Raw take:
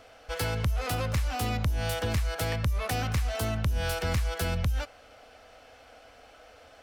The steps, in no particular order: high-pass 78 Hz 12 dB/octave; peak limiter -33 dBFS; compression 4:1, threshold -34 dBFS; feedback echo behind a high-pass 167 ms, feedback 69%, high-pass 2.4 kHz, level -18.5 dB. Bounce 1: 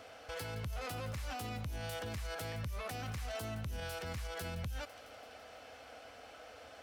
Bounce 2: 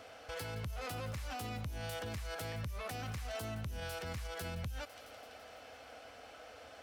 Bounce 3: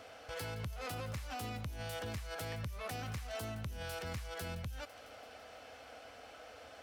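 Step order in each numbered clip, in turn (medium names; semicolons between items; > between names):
high-pass > compression > feedback echo behind a high-pass > peak limiter; feedback echo behind a high-pass > compression > high-pass > peak limiter; compression > feedback echo behind a high-pass > peak limiter > high-pass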